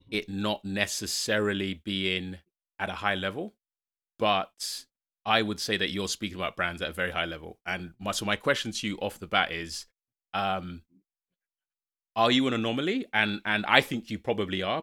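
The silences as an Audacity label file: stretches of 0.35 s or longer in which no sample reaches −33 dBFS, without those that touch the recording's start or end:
2.340000	2.800000	silence
3.470000	4.220000	silence
4.800000	5.260000	silence
9.810000	10.340000	silence
10.740000	12.160000	silence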